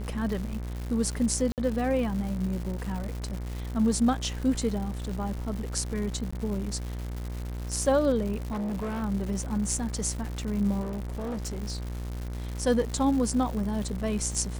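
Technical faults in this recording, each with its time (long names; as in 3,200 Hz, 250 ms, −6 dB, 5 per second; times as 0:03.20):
mains buzz 60 Hz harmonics 39 −34 dBFS
surface crackle 250 per second −34 dBFS
0:01.52–0:01.58: drop-out 58 ms
0:06.31–0:06.33: drop-out 15 ms
0:08.51–0:09.03: clipping −28.5 dBFS
0:10.81–0:11.63: clipping −29.5 dBFS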